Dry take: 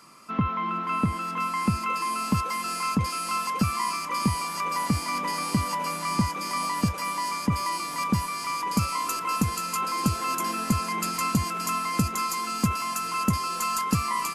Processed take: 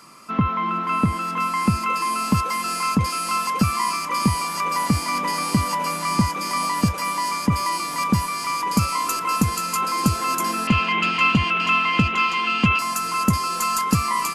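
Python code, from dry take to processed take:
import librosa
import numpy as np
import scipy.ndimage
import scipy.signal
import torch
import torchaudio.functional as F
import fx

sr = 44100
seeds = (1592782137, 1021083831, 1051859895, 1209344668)

y = fx.lowpass_res(x, sr, hz=2900.0, q=6.7, at=(10.67, 12.79))
y = y * 10.0 ** (5.0 / 20.0)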